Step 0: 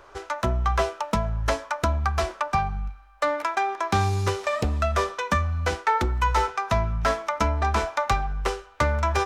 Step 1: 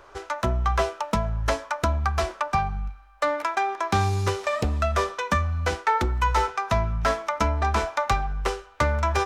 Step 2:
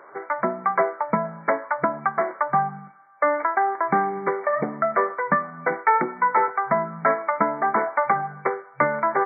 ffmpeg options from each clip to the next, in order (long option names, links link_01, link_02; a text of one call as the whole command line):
ffmpeg -i in.wav -af anull out.wav
ffmpeg -i in.wav -af "lowshelf=frequency=170:gain=-4.5,afftfilt=real='re*between(b*sr/4096,130,2300)':imag='im*between(b*sr/4096,130,2300)':win_size=4096:overlap=0.75,volume=4dB" out.wav